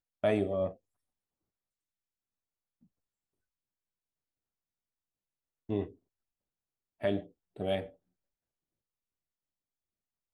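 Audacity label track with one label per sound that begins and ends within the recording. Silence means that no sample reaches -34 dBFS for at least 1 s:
5.690000	5.850000	sound
7.040000	7.830000	sound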